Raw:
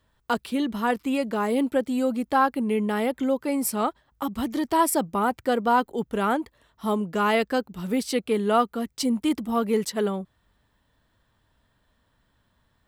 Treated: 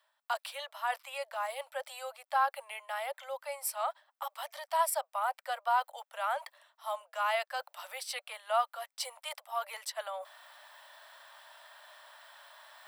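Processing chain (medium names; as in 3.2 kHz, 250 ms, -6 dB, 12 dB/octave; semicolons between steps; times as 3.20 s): steep high-pass 570 Hz 96 dB/octave; band-stop 6.7 kHz, Q 8.2; reverse; upward compressor, threshold -27 dBFS; reverse; trim -7 dB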